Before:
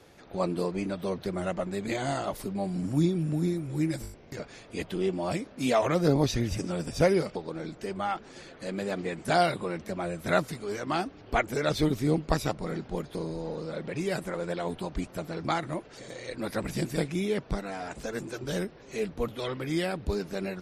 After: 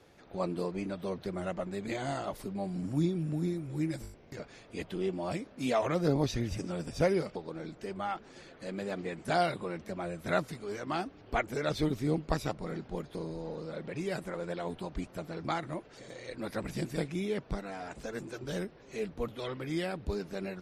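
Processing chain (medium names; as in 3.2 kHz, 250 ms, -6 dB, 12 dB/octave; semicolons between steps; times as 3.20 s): treble shelf 6.5 kHz -4.5 dB; trim -4.5 dB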